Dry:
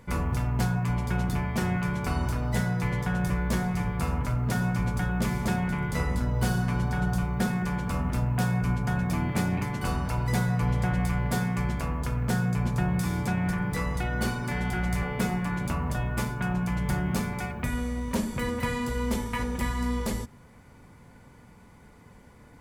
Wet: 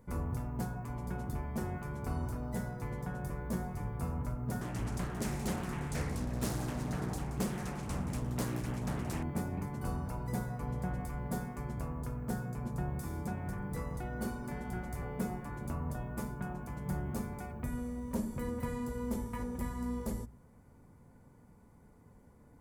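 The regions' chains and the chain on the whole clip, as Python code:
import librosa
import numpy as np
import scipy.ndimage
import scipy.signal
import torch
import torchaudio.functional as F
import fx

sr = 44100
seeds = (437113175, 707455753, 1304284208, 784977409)

y = fx.chain(x, sr, fx.band_shelf(hz=4300.0, db=11.0, octaves=2.5),
    fx.echo_split(split_hz=840.0, low_ms=131, high_ms=176, feedback_pct=52, wet_db=-11.5),
    fx.doppler_dist(depth_ms=0.79), at=(4.61, 9.23))
y = fx.peak_eq(y, sr, hz=3000.0, db=-14.0, octaves=2.3)
y = fx.hum_notches(y, sr, base_hz=60, count=3)
y = y * 10.0 ** (-6.0 / 20.0)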